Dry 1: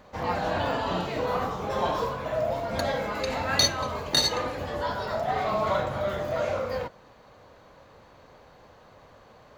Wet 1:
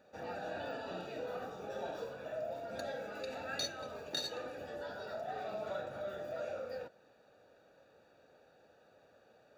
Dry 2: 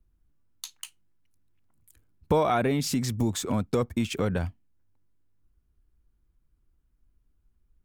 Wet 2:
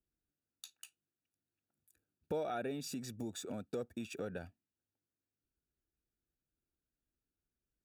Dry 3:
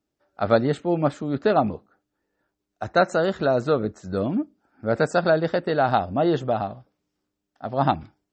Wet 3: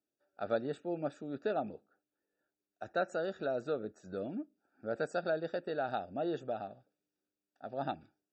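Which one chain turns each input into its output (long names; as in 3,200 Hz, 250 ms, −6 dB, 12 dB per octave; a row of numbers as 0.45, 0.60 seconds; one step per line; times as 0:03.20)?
moving average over 42 samples
first difference
in parallel at −2 dB: downward compressor, threshold −60 dBFS
on the sum: level +12 dB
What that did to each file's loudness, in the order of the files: −14.5, −14.5, −14.5 LU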